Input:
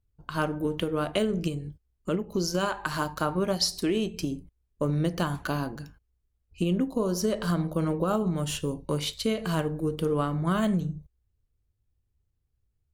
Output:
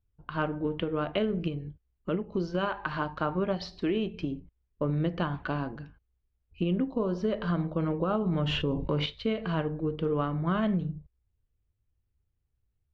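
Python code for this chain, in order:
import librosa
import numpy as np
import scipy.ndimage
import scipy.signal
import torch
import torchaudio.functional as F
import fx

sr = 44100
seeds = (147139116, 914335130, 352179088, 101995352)

y = scipy.signal.sosfilt(scipy.signal.butter(4, 3300.0, 'lowpass', fs=sr, output='sos'), x)
y = fx.env_flatten(y, sr, amount_pct=70, at=(8.26, 9.06))
y = F.gain(torch.from_numpy(y), -2.0).numpy()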